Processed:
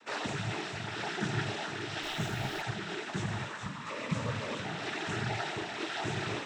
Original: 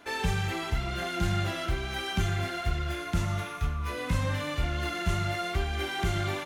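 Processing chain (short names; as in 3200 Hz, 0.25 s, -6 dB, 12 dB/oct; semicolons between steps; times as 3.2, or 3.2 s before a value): noise vocoder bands 12; thin delay 0.416 s, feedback 62%, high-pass 1700 Hz, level -7.5 dB; 2.02–2.61 added noise pink -49 dBFS; gain -3 dB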